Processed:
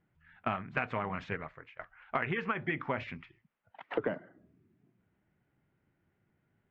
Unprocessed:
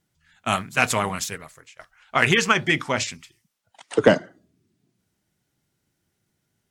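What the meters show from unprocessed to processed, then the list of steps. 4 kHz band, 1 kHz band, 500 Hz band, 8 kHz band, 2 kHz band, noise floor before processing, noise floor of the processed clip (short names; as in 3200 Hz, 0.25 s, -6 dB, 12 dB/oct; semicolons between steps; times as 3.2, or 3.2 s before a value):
-23.5 dB, -11.0 dB, -14.0 dB, under -40 dB, -14.0 dB, -76 dBFS, -78 dBFS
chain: LPF 2300 Hz 24 dB/oct; compressor 16:1, threshold -29 dBFS, peak gain reduction 20.5 dB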